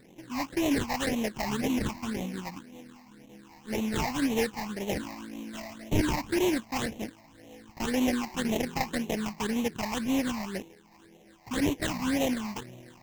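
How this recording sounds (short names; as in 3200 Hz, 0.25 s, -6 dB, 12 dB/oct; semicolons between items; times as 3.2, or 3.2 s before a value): aliases and images of a low sample rate 1300 Hz, jitter 20%; phasing stages 8, 1.9 Hz, lowest notch 430–1500 Hz; Vorbis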